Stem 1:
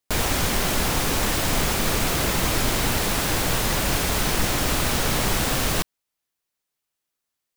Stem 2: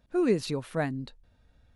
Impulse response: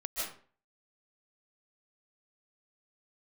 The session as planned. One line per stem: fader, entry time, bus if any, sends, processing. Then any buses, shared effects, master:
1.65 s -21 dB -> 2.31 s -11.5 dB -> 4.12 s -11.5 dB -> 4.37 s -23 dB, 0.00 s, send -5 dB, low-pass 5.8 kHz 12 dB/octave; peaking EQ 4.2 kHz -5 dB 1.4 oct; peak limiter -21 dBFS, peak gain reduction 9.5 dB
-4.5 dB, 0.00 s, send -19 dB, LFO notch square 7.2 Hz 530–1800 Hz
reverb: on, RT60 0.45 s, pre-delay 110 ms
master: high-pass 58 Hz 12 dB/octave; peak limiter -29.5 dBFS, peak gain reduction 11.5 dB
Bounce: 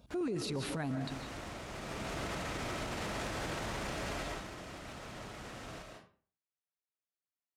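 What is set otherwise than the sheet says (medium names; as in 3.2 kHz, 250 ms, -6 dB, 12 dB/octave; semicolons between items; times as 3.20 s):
stem 2 -4.5 dB -> +6.0 dB; reverb return +6.5 dB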